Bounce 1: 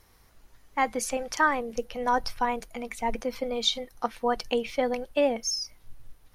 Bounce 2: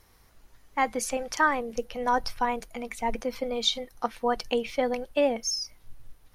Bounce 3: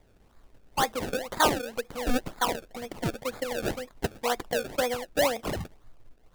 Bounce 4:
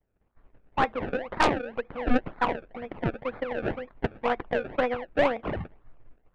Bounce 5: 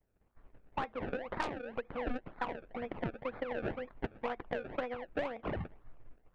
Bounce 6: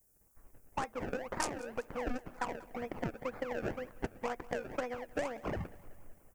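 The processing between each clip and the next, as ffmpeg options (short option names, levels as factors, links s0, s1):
-af anull
-filter_complex "[0:a]acrossover=split=320|490|2000[s0][s1][s2][s3];[s0]acompressor=threshold=0.00562:ratio=6[s4];[s3]asoftclip=type=tanh:threshold=0.0631[s5];[s4][s1][s2][s5]amix=inputs=4:normalize=0,acrusher=samples=30:mix=1:aa=0.000001:lfo=1:lforange=30:lforate=2"
-af "lowpass=f=2500:w=0.5412,lowpass=f=2500:w=1.3066,aeval=exprs='0.316*(cos(1*acos(clip(val(0)/0.316,-1,1)))-cos(1*PI/2))+0.126*(cos(4*acos(clip(val(0)/0.316,-1,1)))-cos(4*PI/2))+0.0708*(cos(5*acos(clip(val(0)/0.316,-1,1)))-cos(5*PI/2))+0.0398*(cos(6*acos(clip(val(0)/0.316,-1,1)))-cos(6*PI/2))+0.0398*(cos(7*acos(clip(val(0)/0.316,-1,1)))-cos(7*PI/2))':c=same,agate=range=0.0224:threshold=0.00447:ratio=3:detection=peak,volume=0.841"
-af "acompressor=threshold=0.0251:ratio=6,volume=0.841"
-af "aexciter=amount=14.4:drive=2.9:freq=5500,aecho=1:1:188|376|564|752|940:0.0944|0.0566|0.034|0.0204|0.0122"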